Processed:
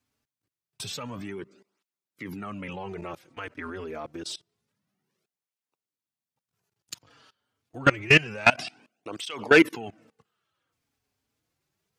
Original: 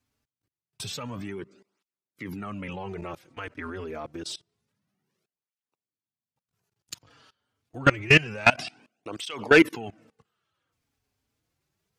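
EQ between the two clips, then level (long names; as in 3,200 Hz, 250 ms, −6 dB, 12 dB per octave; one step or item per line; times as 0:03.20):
low-shelf EQ 85 Hz −8 dB
0.0 dB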